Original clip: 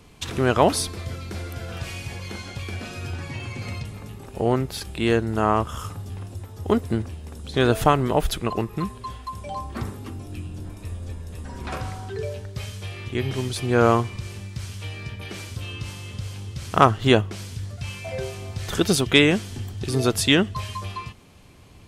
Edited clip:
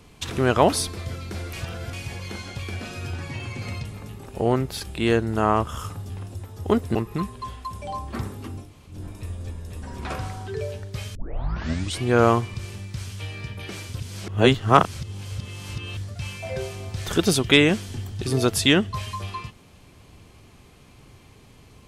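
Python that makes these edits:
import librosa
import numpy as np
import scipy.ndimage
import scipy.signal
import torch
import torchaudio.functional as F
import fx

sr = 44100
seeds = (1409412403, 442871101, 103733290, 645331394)

y = fx.edit(x, sr, fx.reverse_span(start_s=1.53, length_s=0.4),
    fx.cut(start_s=6.95, length_s=1.62),
    fx.room_tone_fill(start_s=10.28, length_s=0.27, crossfade_s=0.16),
    fx.tape_start(start_s=12.77, length_s=0.89),
    fx.reverse_span(start_s=15.62, length_s=1.97), tone=tone)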